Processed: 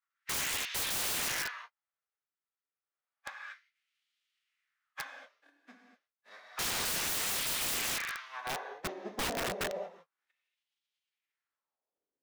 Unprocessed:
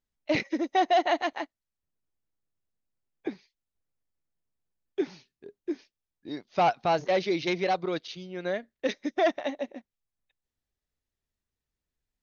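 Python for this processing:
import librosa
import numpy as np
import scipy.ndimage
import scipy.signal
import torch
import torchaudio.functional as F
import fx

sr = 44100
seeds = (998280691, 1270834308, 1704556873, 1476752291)

y = fx.envelope_flatten(x, sr, power=0.3)
y = fx.filter_sweep_highpass(y, sr, from_hz=1500.0, to_hz=60.0, start_s=8.06, end_s=11.61, q=1.6)
y = fx.pitch_keep_formants(y, sr, semitones=-6.0)
y = fx.rev_gated(y, sr, seeds[0], gate_ms=260, shape='flat', drr_db=1.5)
y = fx.wah_lfo(y, sr, hz=0.3, low_hz=300.0, high_hz=3200.0, q=2.3)
y = (np.mod(10.0 ** (32.0 / 20.0) * y + 1.0, 2.0) - 1.0) / 10.0 ** (32.0 / 20.0)
y = F.gain(torch.from_numpy(y), 3.5).numpy()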